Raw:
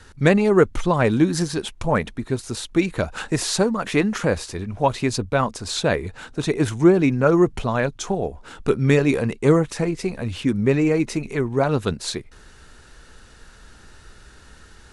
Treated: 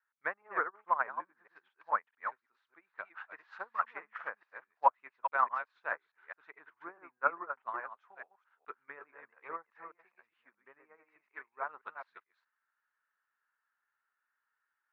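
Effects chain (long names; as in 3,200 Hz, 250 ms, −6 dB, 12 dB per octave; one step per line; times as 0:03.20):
delay that plays each chunk backwards 211 ms, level −4 dB
treble cut that deepens with the level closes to 1,400 Hz, closed at −13.5 dBFS
flat-topped band-pass 1,400 Hz, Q 1.3
expander for the loud parts 2.5 to 1, over −44 dBFS
level +2.5 dB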